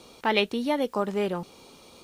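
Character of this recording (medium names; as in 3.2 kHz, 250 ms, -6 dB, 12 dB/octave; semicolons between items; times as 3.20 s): noise floor -53 dBFS; spectral tilt -3.0 dB/octave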